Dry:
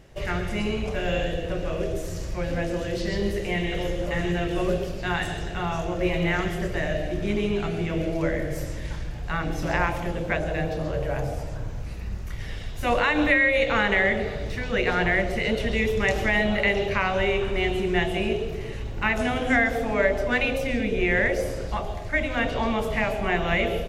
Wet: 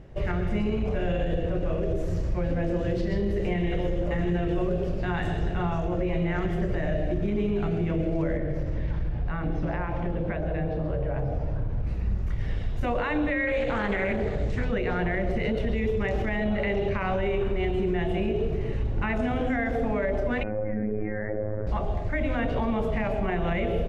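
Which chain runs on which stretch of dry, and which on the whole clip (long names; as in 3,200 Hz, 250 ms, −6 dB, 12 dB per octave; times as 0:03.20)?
0:08.37–0:11.87: downward compressor 4 to 1, threshold −28 dBFS + moving average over 5 samples
0:13.47–0:14.65: parametric band 7,400 Hz +11.5 dB 0.56 octaves + highs frequency-modulated by the lows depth 0.29 ms
0:20.43–0:21.67: Butterworth low-pass 1,900 Hz 48 dB per octave + phases set to zero 106 Hz
whole clip: low-pass filter 1,600 Hz 6 dB per octave; low-shelf EQ 440 Hz +6 dB; brickwall limiter −18.5 dBFS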